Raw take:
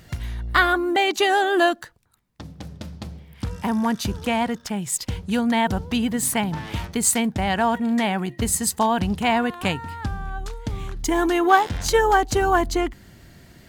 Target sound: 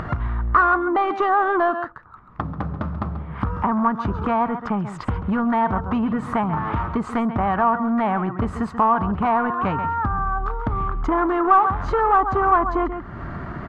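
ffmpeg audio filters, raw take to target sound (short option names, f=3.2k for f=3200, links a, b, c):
-af "aecho=1:1:135:0.178,asoftclip=type=tanh:threshold=-19dB,lowpass=f=1.2k:t=q:w=5.3,acompressor=mode=upward:threshold=-16dB:ratio=2.5,bandreject=f=510:w=12"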